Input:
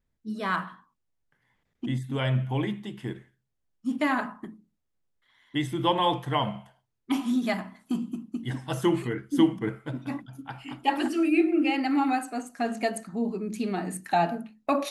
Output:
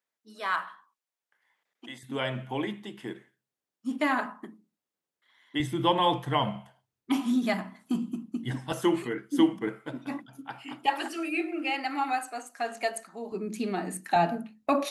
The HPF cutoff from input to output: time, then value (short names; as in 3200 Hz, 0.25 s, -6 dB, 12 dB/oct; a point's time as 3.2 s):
650 Hz
from 2.03 s 260 Hz
from 5.6 s 92 Hz
from 8.72 s 240 Hz
from 10.86 s 560 Hz
from 13.32 s 200 Hz
from 14.16 s 51 Hz